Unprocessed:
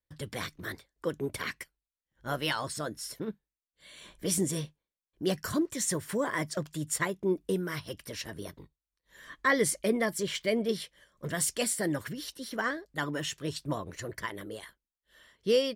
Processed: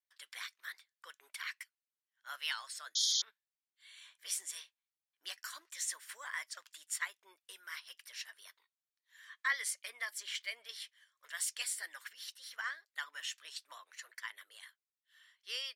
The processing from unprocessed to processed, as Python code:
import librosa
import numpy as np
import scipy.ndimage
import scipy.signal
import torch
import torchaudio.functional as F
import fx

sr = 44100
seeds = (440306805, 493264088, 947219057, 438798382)

y = scipy.signal.sosfilt(scipy.signal.bessel(4, 2100.0, 'highpass', norm='mag', fs=sr, output='sos'), x)
y = fx.spec_paint(y, sr, seeds[0], shape='noise', start_s=2.95, length_s=0.27, low_hz=3100.0, high_hz=7000.0, level_db=-27.0)
y = fx.tilt_eq(y, sr, slope=-2.5)
y = y * librosa.db_to_amplitude(1.0)